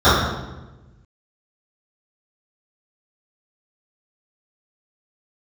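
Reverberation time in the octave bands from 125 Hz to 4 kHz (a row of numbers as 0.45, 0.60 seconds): 1.7, 1.4, 1.2, 1.0, 0.90, 0.80 seconds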